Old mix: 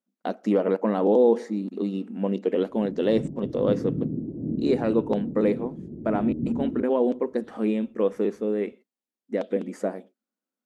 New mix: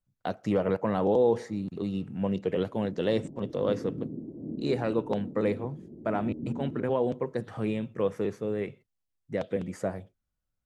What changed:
speech: remove brick-wall FIR high-pass 200 Hz; master: add bass shelf 380 Hz -11.5 dB

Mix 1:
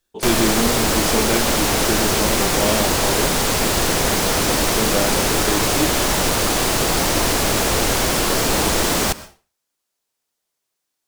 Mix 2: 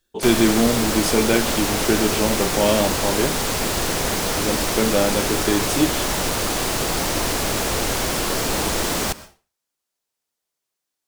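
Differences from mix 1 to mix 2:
speech +3.5 dB; background -4.0 dB

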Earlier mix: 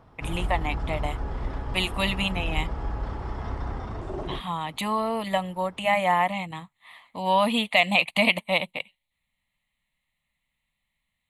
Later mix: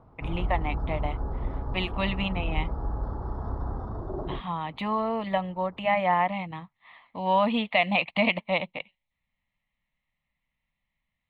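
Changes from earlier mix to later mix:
background: add Butterworth band-stop 2.5 kHz, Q 0.78; master: add distance through air 320 m

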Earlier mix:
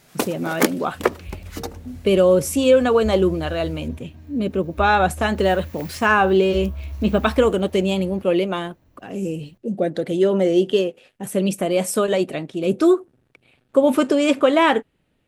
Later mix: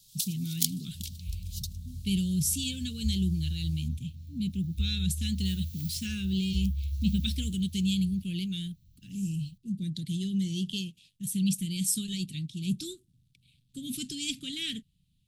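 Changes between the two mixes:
first sound: add inverse Chebyshev high-pass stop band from 890 Hz, stop band 60 dB; master: add Chebyshev band-stop 170–3600 Hz, order 3

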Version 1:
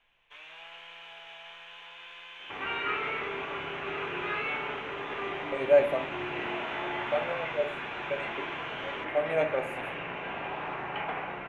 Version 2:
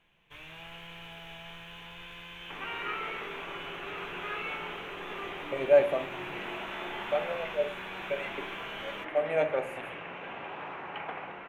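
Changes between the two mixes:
first sound: remove three-band isolator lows -22 dB, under 460 Hz, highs -19 dB, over 7.1 kHz; second sound: send -10.5 dB

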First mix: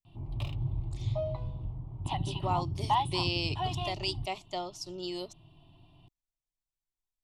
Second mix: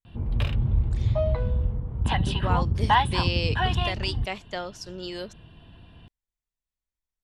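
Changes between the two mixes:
background +5.5 dB; master: remove static phaser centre 320 Hz, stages 8

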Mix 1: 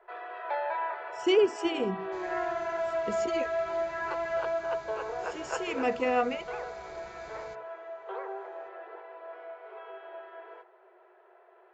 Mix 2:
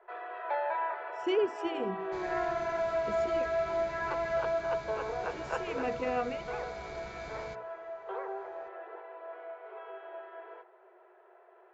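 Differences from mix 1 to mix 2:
speech -5.5 dB; second sound +7.5 dB; master: add low-pass 3 kHz 6 dB/octave

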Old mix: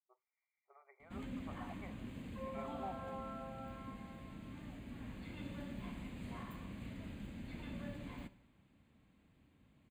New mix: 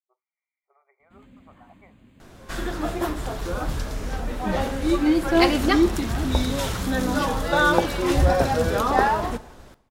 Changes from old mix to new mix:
first sound -6.5 dB; second sound: unmuted

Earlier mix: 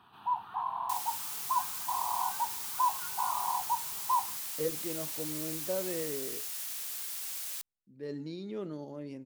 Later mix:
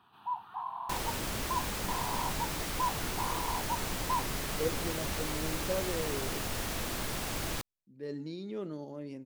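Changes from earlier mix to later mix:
first sound -4.0 dB; second sound: remove differentiator

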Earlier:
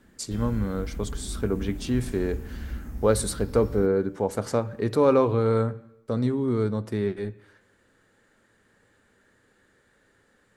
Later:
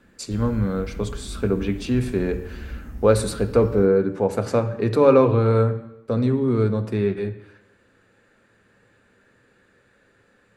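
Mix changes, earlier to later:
speech: send +11.0 dB; master: add treble shelf 5.7 kHz -4.5 dB

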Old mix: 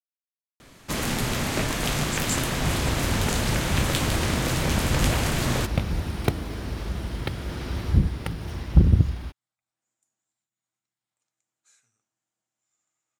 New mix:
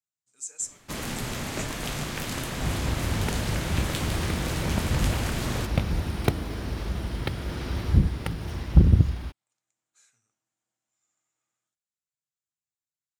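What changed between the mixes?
speech: entry -1.70 s; first sound -6.0 dB

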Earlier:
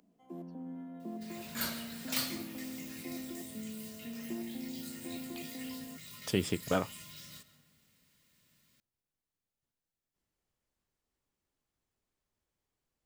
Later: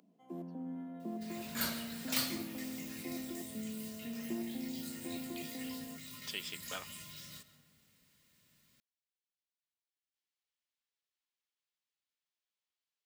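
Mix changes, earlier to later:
speech: add band-pass filter 3.5 kHz, Q 1.2; first sound: send on

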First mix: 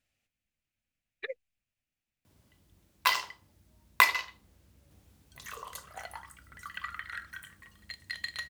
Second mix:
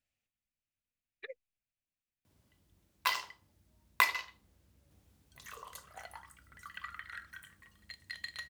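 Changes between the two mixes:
speech -8.0 dB; background -5.5 dB

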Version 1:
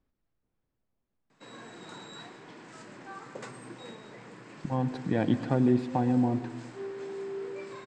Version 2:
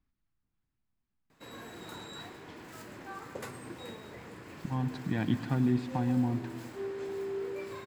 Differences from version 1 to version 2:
speech: add peaking EQ 510 Hz -14.5 dB 1.1 oct; background: remove Chebyshev band-pass 120–8500 Hz, order 5

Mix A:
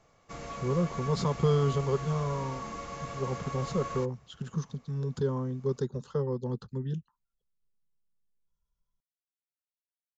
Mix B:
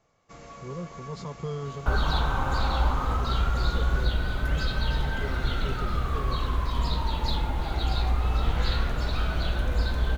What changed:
speech -8.5 dB; first sound -4.5 dB; second sound: unmuted

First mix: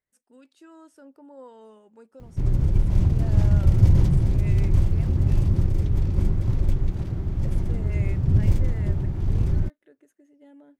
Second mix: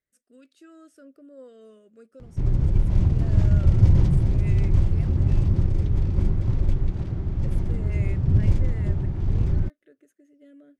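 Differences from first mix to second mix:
speech: add Butterworth band-stop 890 Hz, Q 1.8; background: add distance through air 56 m

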